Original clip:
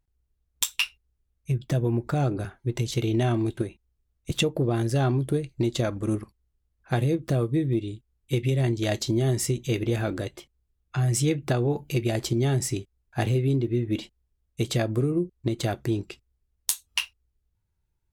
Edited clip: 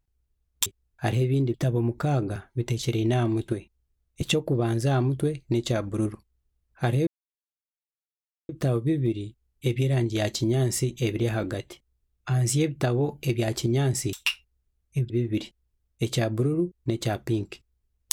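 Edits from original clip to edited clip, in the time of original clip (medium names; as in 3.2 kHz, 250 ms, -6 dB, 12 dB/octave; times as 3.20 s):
0.66–1.63 s: swap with 12.80–13.68 s
7.16 s: insert silence 1.42 s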